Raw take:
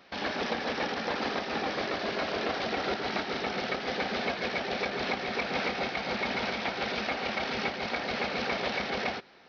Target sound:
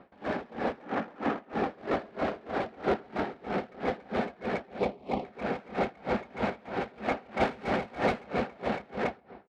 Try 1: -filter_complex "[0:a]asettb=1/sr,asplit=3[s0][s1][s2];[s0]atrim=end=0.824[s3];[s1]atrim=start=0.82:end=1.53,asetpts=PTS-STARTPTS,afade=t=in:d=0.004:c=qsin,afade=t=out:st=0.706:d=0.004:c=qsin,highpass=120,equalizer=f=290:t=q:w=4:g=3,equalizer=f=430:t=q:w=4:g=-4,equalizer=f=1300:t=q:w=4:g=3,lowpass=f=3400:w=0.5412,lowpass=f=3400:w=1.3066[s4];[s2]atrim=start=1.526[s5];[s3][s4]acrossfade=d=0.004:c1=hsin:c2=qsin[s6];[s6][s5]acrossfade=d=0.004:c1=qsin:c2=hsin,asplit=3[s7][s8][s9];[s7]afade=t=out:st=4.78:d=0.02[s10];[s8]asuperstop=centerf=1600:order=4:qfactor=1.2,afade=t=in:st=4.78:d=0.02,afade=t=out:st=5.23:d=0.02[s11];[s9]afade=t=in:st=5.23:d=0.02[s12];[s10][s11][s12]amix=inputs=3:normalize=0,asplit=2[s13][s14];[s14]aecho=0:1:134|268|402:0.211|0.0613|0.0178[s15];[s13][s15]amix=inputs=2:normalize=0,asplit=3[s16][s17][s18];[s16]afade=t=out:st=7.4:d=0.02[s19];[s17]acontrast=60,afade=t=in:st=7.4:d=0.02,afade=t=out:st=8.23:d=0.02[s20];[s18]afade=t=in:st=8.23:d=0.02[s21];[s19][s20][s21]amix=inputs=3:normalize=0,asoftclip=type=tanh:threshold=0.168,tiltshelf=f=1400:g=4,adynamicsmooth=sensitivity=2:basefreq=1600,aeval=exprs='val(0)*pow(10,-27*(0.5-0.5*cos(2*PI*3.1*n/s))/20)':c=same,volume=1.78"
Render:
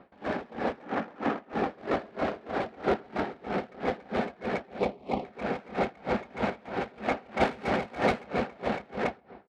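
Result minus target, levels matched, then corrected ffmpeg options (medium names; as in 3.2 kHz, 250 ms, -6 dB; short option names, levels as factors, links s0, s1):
saturation: distortion -9 dB
-filter_complex "[0:a]asettb=1/sr,asplit=3[s0][s1][s2];[s0]atrim=end=0.824[s3];[s1]atrim=start=0.82:end=1.53,asetpts=PTS-STARTPTS,afade=t=in:d=0.004:c=qsin,afade=t=out:st=0.706:d=0.004:c=qsin,highpass=120,equalizer=f=290:t=q:w=4:g=3,equalizer=f=430:t=q:w=4:g=-4,equalizer=f=1300:t=q:w=4:g=3,lowpass=f=3400:w=0.5412,lowpass=f=3400:w=1.3066[s4];[s2]atrim=start=1.526[s5];[s3][s4]acrossfade=d=0.004:c1=hsin:c2=qsin[s6];[s6][s5]acrossfade=d=0.004:c1=qsin:c2=hsin,asplit=3[s7][s8][s9];[s7]afade=t=out:st=4.78:d=0.02[s10];[s8]asuperstop=centerf=1600:order=4:qfactor=1.2,afade=t=in:st=4.78:d=0.02,afade=t=out:st=5.23:d=0.02[s11];[s9]afade=t=in:st=5.23:d=0.02[s12];[s10][s11][s12]amix=inputs=3:normalize=0,asplit=2[s13][s14];[s14]aecho=0:1:134|268|402:0.211|0.0613|0.0178[s15];[s13][s15]amix=inputs=2:normalize=0,asplit=3[s16][s17][s18];[s16]afade=t=out:st=7.4:d=0.02[s19];[s17]acontrast=60,afade=t=in:st=7.4:d=0.02,afade=t=out:st=8.23:d=0.02[s20];[s18]afade=t=in:st=8.23:d=0.02[s21];[s19][s20][s21]amix=inputs=3:normalize=0,asoftclip=type=tanh:threshold=0.075,tiltshelf=f=1400:g=4,adynamicsmooth=sensitivity=2:basefreq=1600,aeval=exprs='val(0)*pow(10,-27*(0.5-0.5*cos(2*PI*3.1*n/s))/20)':c=same,volume=1.78"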